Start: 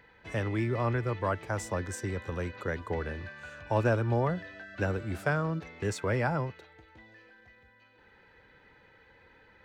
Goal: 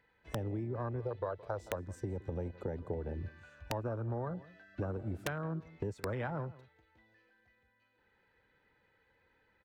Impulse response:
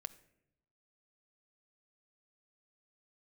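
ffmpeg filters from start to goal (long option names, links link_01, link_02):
-filter_complex "[0:a]afwtdn=0.0224,asettb=1/sr,asplit=3[link_01][link_02][link_03];[link_01]atrim=end=1.004[link_04];[link_02]atrim=start=1:end=1.76,asetpts=PTS-STARTPTS,afade=type=in:duration=0.004:curve=qsin,afade=type=out:start_time=0.756:duration=0.004:curve=qsin,equalizer=frequency=250:width_type=o:width=1:gain=-10,equalizer=frequency=500:width_type=o:width=1:gain=10,equalizer=frequency=4000:width_type=o:width=1:gain=11,equalizer=frequency=8000:width_type=o:width=1:gain=-3[link_05];[link_03]atrim=start=1.756[link_06];[link_04][link_05]acrossfade=duration=0.004:curve1=hsin:curve2=qsin[link_07];[link_07][link_06]acrossfade=duration=0.004:curve1=qsin:curve2=hsin,acompressor=threshold=-38dB:ratio=8,asplit=2[link_08][link_09];[link_09]adelay=169.1,volume=-19dB,highshelf=frequency=4000:gain=-3.8[link_10];[link_08][link_10]amix=inputs=2:normalize=0,aeval=exprs='(mod(25.1*val(0)+1,2)-1)/25.1':channel_layout=same,volume=3.5dB"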